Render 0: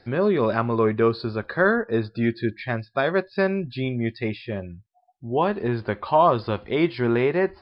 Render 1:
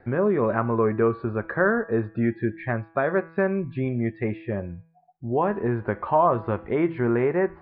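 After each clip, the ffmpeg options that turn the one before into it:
ffmpeg -i in.wav -filter_complex "[0:a]lowpass=frequency=2000:width=0.5412,lowpass=frequency=2000:width=1.3066,bandreject=frequency=163.9:width_type=h:width=4,bandreject=frequency=327.8:width_type=h:width=4,bandreject=frequency=491.7:width_type=h:width=4,bandreject=frequency=655.6:width_type=h:width=4,bandreject=frequency=819.5:width_type=h:width=4,bandreject=frequency=983.4:width_type=h:width=4,bandreject=frequency=1147.3:width_type=h:width=4,bandreject=frequency=1311.2:width_type=h:width=4,bandreject=frequency=1475.1:width_type=h:width=4,bandreject=frequency=1639:width_type=h:width=4,bandreject=frequency=1802.9:width_type=h:width=4,bandreject=frequency=1966.8:width_type=h:width=4,bandreject=frequency=2130.7:width_type=h:width=4,bandreject=frequency=2294.6:width_type=h:width=4,bandreject=frequency=2458.5:width_type=h:width=4,bandreject=frequency=2622.4:width_type=h:width=4,bandreject=frequency=2786.3:width_type=h:width=4,bandreject=frequency=2950.2:width_type=h:width=4,bandreject=frequency=3114.1:width_type=h:width=4,bandreject=frequency=3278:width_type=h:width=4,bandreject=frequency=3441.9:width_type=h:width=4,asplit=2[link_01][link_02];[link_02]acompressor=threshold=-28dB:ratio=6,volume=2dB[link_03];[link_01][link_03]amix=inputs=2:normalize=0,volume=-4dB" out.wav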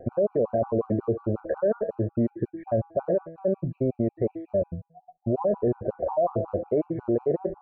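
ffmpeg -i in.wav -af "lowpass=frequency=600:width_type=q:width=4.9,alimiter=limit=-20.5dB:level=0:latency=1:release=20,afftfilt=real='re*gt(sin(2*PI*5.5*pts/sr)*(1-2*mod(floor(b*sr/1024/770),2)),0)':imag='im*gt(sin(2*PI*5.5*pts/sr)*(1-2*mod(floor(b*sr/1024/770),2)),0)':win_size=1024:overlap=0.75,volume=5dB" out.wav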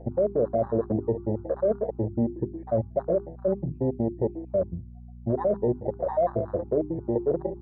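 ffmpeg -i in.wav -af "afwtdn=0.0251,aeval=exprs='val(0)+0.00794*(sin(2*PI*60*n/s)+sin(2*PI*2*60*n/s)/2+sin(2*PI*3*60*n/s)/3+sin(2*PI*4*60*n/s)/4+sin(2*PI*5*60*n/s)/5)':channel_layout=same,bandreject=frequency=50:width_type=h:width=6,bandreject=frequency=100:width_type=h:width=6,bandreject=frequency=150:width_type=h:width=6,bandreject=frequency=200:width_type=h:width=6,bandreject=frequency=250:width_type=h:width=6,bandreject=frequency=300:width_type=h:width=6,bandreject=frequency=350:width_type=h:width=6,bandreject=frequency=400:width_type=h:width=6" out.wav

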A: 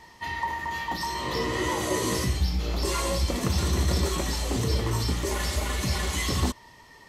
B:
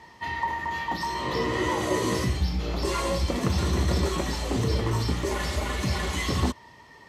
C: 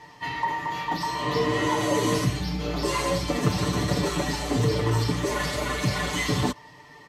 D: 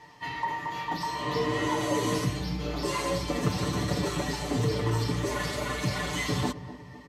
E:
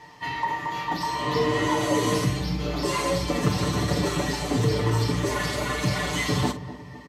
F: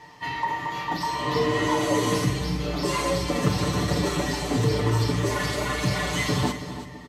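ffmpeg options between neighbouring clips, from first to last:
ffmpeg -i in.wav -af "highpass=64,aemphasis=mode=reproduction:type=cd,volume=1.5dB" out.wav
ffmpeg -i in.wav -af "aecho=1:1:6.8:0.9" out.wav
ffmpeg -i in.wav -filter_complex "[0:a]asplit=2[link_01][link_02];[link_02]adelay=251,lowpass=frequency=810:poles=1,volume=-12.5dB,asplit=2[link_03][link_04];[link_04]adelay=251,lowpass=frequency=810:poles=1,volume=0.55,asplit=2[link_05][link_06];[link_06]adelay=251,lowpass=frequency=810:poles=1,volume=0.55,asplit=2[link_07][link_08];[link_08]adelay=251,lowpass=frequency=810:poles=1,volume=0.55,asplit=2[link_09][link_10];[link_10]adelay=251,lowpass=frequency=810:poles=1,volume=0.55,asplit=2[link_11][link_12];[link_12]adelay=251,lowpass=frequency=810:poles=1,volume=0.55[link_13];[link_01][link_03][link_05][link_07][link_09][link_11][link_13]amix=inputs=7:normalize=0,volume=-4dB" out.wav
ffmpeg -i in.wav -filter_complex "[0:a]asplit=2[link_01][link_02];[link_02]adelay=46,volume=-12.5dB[link_03];[link_01][link_03]amix=inputs=2:normalize=0,volume=4dB" out.wav
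ffmpeg -i in.wav -af "aecho=1:1:330|660|990:0.224|0.0493|0.0108" out.wav

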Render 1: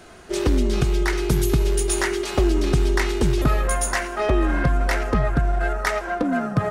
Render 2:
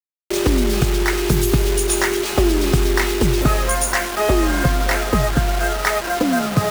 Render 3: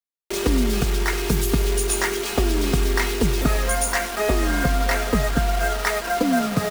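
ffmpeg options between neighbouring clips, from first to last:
ffmpeg -i in.wav -af "highpass=frequency=49:poles=1,acrusher=bits=4:mix=0:aa=0.000001,volume=4dB" out.wav
ffmpeg -i in.wav -af "aecho=1:1:4.3:0.47,volume=-4dB" out.wav

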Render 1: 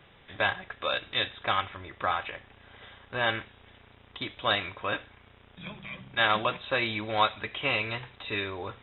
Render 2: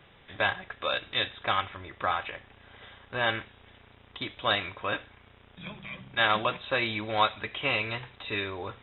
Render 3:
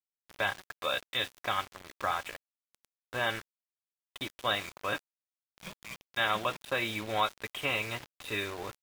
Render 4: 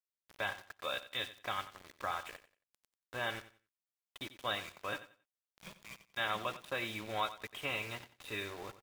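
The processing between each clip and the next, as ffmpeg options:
ffmpeg -i in.wav -af anull out.wav
ffmpeg -i in.wav -filter_complex "[0:a]equalizer=frequency=66:width=3.7:gain=-6.5,asplit=2[link_01][link_02];[link_02]alimiter=limit=-17.5dB:level=0:latency=1:release=417,volume=0dB[link_03];[link_01][link_03]amix=inputs=2:normalize=0,aeval=exprs='val(0)*gte(abs(val(0)),0.0266)':channel_layout=same,volume=-8dB" out.wav
ffmpeg -i in.wav -af "aecho=1:1:91|182|273:0.188|0.0452|0.0108,volume=-6.5dB" out.wav

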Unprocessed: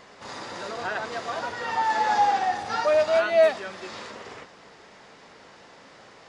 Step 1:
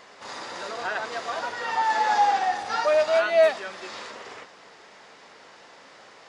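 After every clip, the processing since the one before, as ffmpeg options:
ffmpeg -i in.wav -af "lowshelf=frequency=240:gain=-12,volume=1.5dB" out.wav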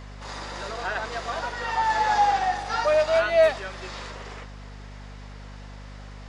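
ffmpeg -i in.wav -af "aeval=exprs='val(0)+0.01*(sin(2*PI*50*n/s)+sin(2*PI*2*50*n/s)/2+sin(2*PI*3*50*n/s)/3+sin(2*PI*4*50*n/s)/4+sin(2*PI*5*50*n/s)/5)':channel_layout=same" out.wav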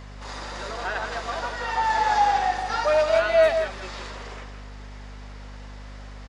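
ffmpeg -i in.wav -filter_complex "[0:a]asplit=2[link_01][link_02];[link_02]adelay=163.3,volume=-7dB,highshelf=frequency=4000:gain=-3.67[link_03];[link_01][link_03]amix=inputs=2:normalize=0" out.wav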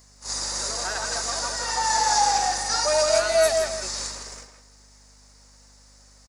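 ffmpeg -i in.wav -filter_complex "[0:a]agate=range=-13dB:threshold=-36dB:ratio=16:detection=peak,aexciter=amount=13.6:drive=5.1:freq=4800,asplit=2[link_01][link_02];[link_02]adelay=160,highpass=300,lowpass=3400,asoftclip=type=hard:threshold=-16dB,volume=-7dB[link_03];[link_01][link_03]amix=inputs=2:normalize=0,volume=-2.5dB" out.wav

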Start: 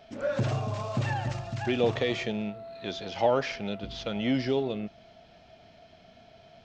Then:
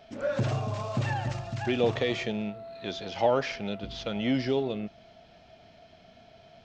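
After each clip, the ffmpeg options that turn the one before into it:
ffmpeg -i in.wav -af anull out.wav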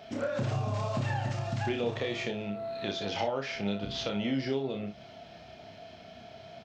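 ffmpeg -i in.wav -filter_complex "[0:a]highpass=68,acompressor=threshold=-36dB:ratio=4,asplit=2[link_01][link_02];[link_02]aecho=0:1:30|59:0.531|0.282[link_03];[link_01][link_03]amix=inputs=2:normalize=0,volume=4.5dB" out.wav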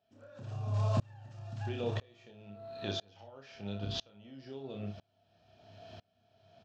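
ffmpeg -i in.wav -af "equalizer=frequency=100:width=7.3:gain=12,bandreject=frequency=2100:width=5.4,aeval=exprs='val(0)*pow(10,-31*if(lt(mod(-1*n/s,1),2*abs(-1)/1000),1-mod(-1*n/s,1)/(2*abs(-1)/1000),(mod(-1*n/s,1)-2*abs(-1)/1000)/(1-2*abs(-1)/1000))/20)':channel_layout=same" out.wav

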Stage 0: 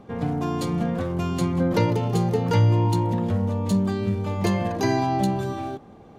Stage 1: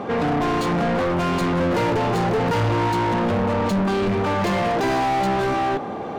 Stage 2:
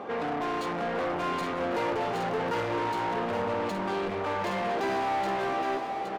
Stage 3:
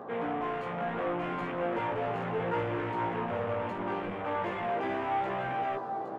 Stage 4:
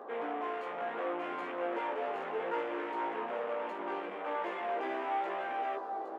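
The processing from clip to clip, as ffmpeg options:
ffmpeg -i in.wav -filter_complex "[0:a]asplit=2[link_01][link_02];[link_02]highpass=frequency=720:poles=1,volume=37dB,asoftclip=type=tanh:threshold=-8.5dB[link_03];[link_01][link_03]amix=inputs=2:normalize=0,lowpass=frequency=1600:poles=1,volume=-6dB,volume=-5dB" out.wav
ffmpeg -i in.wav -af "bass=frequency=250:gain=-12,treble=frequency=4000:gain=-4,aecho=1:1:818:0.501,volume=-7.5dB" out.wav
ffmpeg -i in.wav -af "afwtdn=0.0112,equalizer=frequency=130:width_type=o:width=0.45:gain=7.5,flanger=delay=16.5:depth=2.2:speed=0.72" out.wav
ffmpeg -i in.wav -af "highpass=frequency=300:width=0.5412,highpass=frequency=300:width=1.3066,volume=-3dB" out.wav

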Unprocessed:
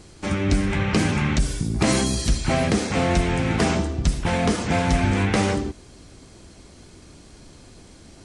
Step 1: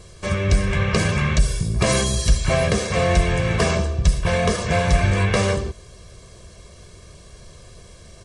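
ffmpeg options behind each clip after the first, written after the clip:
ffmpeg -i in.wav -af "aecho=1:1:1.8:0.85" out.wav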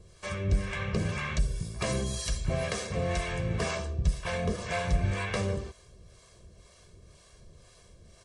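ffmpeg -i in.wav -filter_complex "[0:a]acrossover=split=540[link_01][link_02];[link_01]aeval=exprs='val(0)*(1-0.7/2+0.7/2*cos(2*PI*2*n/s))':channel_layout=same[link_03];[link_02]aeval=exprs='val(0)*(1-0.7/2-0.7/2*cos(2*PI*2*n/s))':channel_layout=same[link_04];[link_03][link_04]amix=inputs=2:normalize=0,volume=-8dB" out.wav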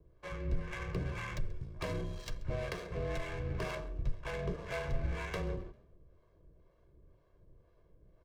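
ffmpeg -i in.wav -filter_complex "[0:a]adynamicsmooth=sensitivity=7.5:basefreq=1000,afreqshift=-31,asplit=4[link_01][link_02][link_03][link_04];[link_02]adelay=133,afreqshift=32,volume=-22dB[link_05];[link_03]adelay=266,afreqshift=64,volume=-30.9dB[link_06];[link_04]adelay=399,afreqshift=96,volume=-39.7dB[link_07];[link_01][link_05][link_06][link_07]amix=inputs=4:normalize=0,volume=-6.5dB" out.wav

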